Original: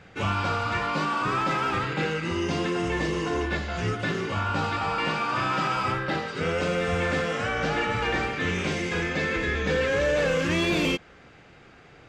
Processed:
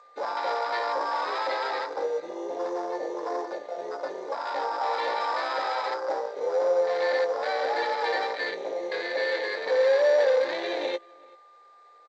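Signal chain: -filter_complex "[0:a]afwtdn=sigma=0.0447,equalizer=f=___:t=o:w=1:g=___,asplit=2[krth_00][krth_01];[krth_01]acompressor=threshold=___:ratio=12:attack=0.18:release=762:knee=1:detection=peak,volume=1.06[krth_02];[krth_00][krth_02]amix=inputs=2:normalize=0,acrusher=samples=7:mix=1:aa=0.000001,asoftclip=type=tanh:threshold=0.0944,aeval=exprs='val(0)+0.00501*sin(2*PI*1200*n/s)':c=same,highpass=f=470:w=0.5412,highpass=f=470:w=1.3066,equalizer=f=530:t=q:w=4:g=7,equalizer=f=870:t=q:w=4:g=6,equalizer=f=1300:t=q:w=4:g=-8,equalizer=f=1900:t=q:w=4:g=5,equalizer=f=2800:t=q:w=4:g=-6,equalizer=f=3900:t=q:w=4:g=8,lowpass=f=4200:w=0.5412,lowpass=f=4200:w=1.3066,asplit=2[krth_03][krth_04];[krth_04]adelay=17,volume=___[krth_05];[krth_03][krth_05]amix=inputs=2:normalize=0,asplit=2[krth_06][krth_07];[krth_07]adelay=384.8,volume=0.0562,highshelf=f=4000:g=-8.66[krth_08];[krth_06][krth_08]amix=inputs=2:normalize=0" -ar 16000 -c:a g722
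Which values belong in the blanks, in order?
2700, -6, 0.02, 0.299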